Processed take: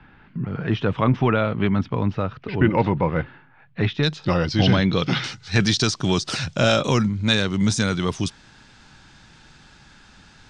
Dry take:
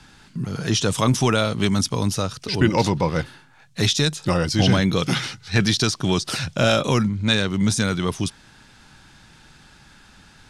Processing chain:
low-pass filter 2,500 Hz 24 dB per octave, from 0:04.03 4,700 Hz, from 0:05.24 7,800 Hz

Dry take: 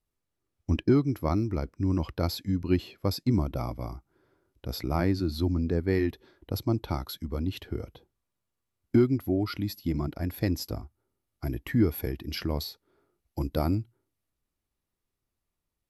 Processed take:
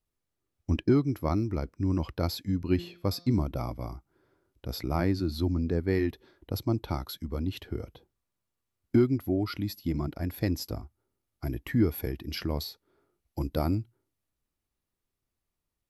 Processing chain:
0:02.73–0:03.43: hum removal 174 Hz, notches 38
level −1 dB

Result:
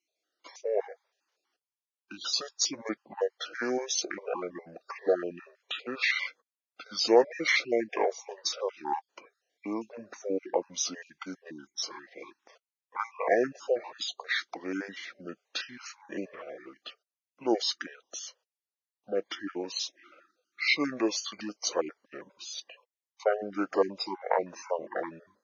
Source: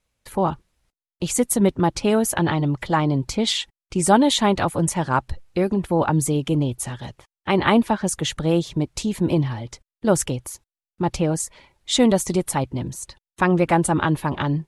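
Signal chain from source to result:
time-frequency cells dropped at random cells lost 40%
high-pass filter 610 Hz 24 dB per octave
wrong playback speed 78 rpm record played at 45 rpm
level −3.5 dB

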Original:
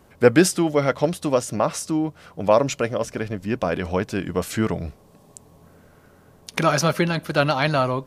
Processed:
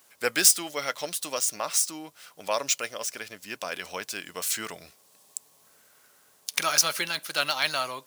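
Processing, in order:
running median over 3 samples
first difference
level +8.5 dB

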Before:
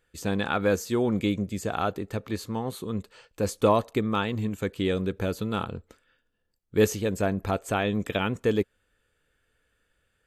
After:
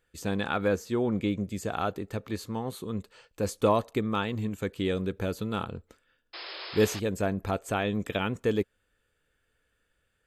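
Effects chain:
0:00.68–0:01.39: high-shelf EQ 4,400 Hz −8.5 dB
0:06.33–0:07.00: sound drawn into the spectrogram noise 310–5,300 Hz −38 dBFS
level −2.5 dB

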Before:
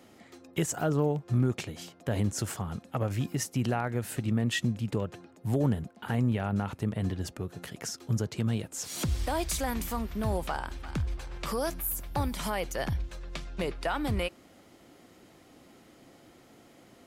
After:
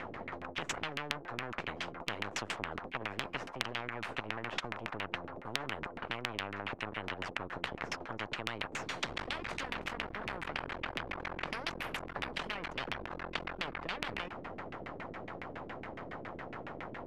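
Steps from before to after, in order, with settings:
half-wave rectification
auto-filter low-pass saw down 7.2 Hz 250–2,400 Hz
every bin compressed towards the loudest bin 10 to 1
level +4.5 dB

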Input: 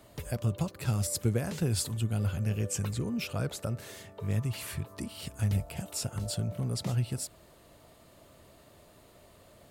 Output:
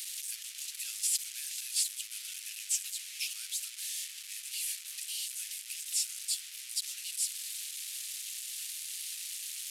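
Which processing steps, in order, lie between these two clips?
linear delta modulator 64 kbit/s, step −33.5 dBFS
inverse Chebyshev high-pass filter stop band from 730 Hz, stop band 60 dB
high-shelf EQ 6,000 Hz +9 dB

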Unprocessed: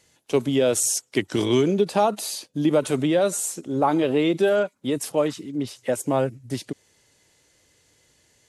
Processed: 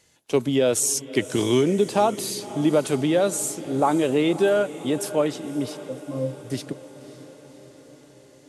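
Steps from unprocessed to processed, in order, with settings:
0:05.77–0:06.40: resonances in every octave C, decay 0.24 s
feedback delay with all-pass diffusion 555 ms, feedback 64%, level −16 dB

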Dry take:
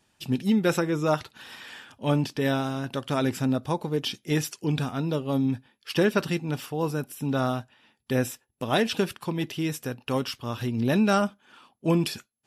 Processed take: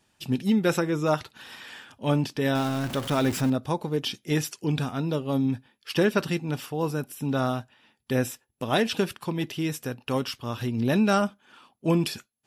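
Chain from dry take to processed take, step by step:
0:02.55–0:03.50: converter with a step at zero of −31 dBFS

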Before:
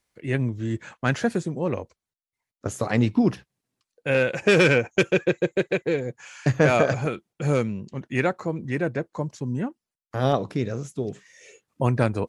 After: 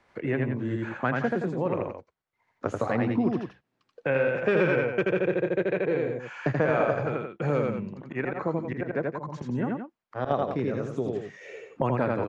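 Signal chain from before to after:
low-pass filter 1,300 Hz 12 dB per octave
spectral tilt +2.5 dB per octave
0:07.75–0:10.31: volume swells 169 ms
loudspeakers that aren't time-aligned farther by 28 metres −2 dB, 59 metres −10 dB
multiband upward and downward compressor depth 70%
level −1 dB

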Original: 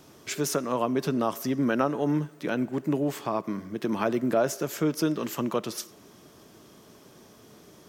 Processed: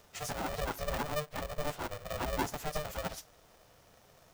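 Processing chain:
time stretch by phase vocoder 0.55×
ring modulator with a square carrier 300 Hz
level −5.5 dB

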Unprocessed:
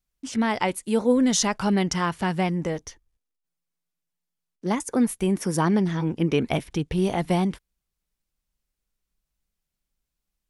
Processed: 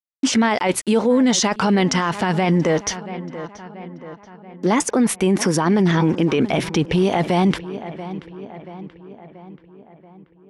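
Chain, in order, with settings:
high-pass filter 90 Hz 6 dB per octave
low-shelf EQ 180 Hz −7.5 dB
mains-hum notches 60/120 Hz
reversed playback
downward compressor 6 to 1, threshold −31 dBFS, peak gain reduction 13.5 dB
reversed playback
centre clipping without the shift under −57 dBFS
high-frequency loss of the air 71 metres
on a send: feedback echo with a low-pass in the loop 682 ms, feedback 56%, low-pass 3,100 Hz, level −20.5 dB
on the sum: boost into a limiter +32 dB
level −8.5 dB

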